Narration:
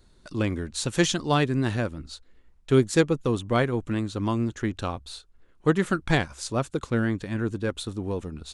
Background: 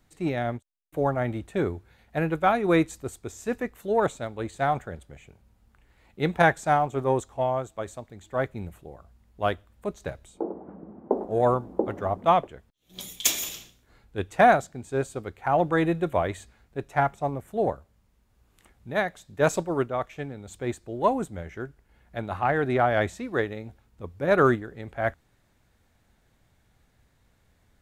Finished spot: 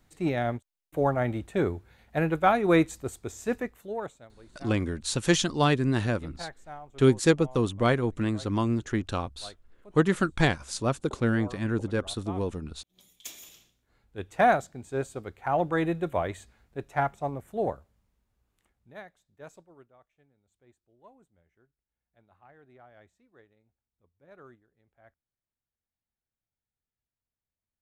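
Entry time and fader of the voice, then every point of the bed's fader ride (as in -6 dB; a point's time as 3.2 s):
4.30 s, -0.5 dB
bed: 3.55 s 0 dB
4.37 s -21 dB
13.09 s -21 dB
14.48 s -3.5 dB
17.79 s -3.5 dB
20.05 s -32 dB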